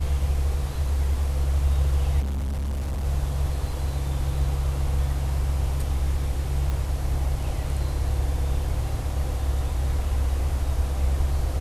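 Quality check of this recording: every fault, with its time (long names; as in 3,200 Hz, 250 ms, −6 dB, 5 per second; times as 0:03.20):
0:02.20–0:03.05: clipping −24.5 dBFS
0:03.67: drop-out 2.1 ms
0:06.70: click −17 dBFS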